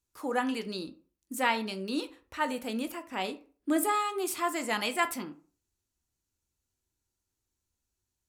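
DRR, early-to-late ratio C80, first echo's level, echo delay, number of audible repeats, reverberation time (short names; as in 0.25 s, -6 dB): 7.5 dB, 21.5 dB, none, none, none, 0.40 s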